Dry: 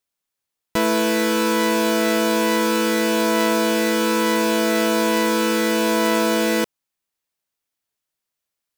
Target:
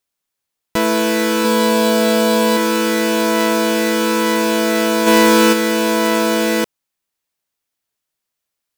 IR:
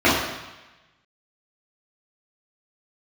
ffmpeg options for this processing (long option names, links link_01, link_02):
-filter_complex "[0:a]asettb=1/sr,asplit=3[link_01][link_02][link_03];[link_01]atrim=end=1.444[link_04];[link_02]atrim=start=1.44:end=2.57,asetpts=PTS-STARTPTS,afade=type=in:duration=0.004:curve=qsin,afade=type=out:start_time=1.126:duration=0.004:curve=qsin,aecho=1:1:4.3:0.54,atrim=end_sample=49833[link_05];[link_03]atrim=start=2.566[link_06];[link_04][link_05]acrossfade=duration=0.004:curve1=hsin:curve2=qsin[link_07];[link_07][link_06]acrossfade=duration=0.004:curve1=qsin:curve2=hsin,asplit=3[link_08][link_09][link_10];[link_08]afade=type=out:start_time=5.06:duration=0.02[link_11];[link_09]acontrast=50,afade=type=in:start_time=5.06:duration=0.02,afade=type=out:start_time=5.52:duration=0.02[link_12];[link_10]afade=type=in:start_time=5.52:duration=0.02[link_13];[link_11][link_12][link_13]amix=inputs=3:normalize=0,volume=3dB"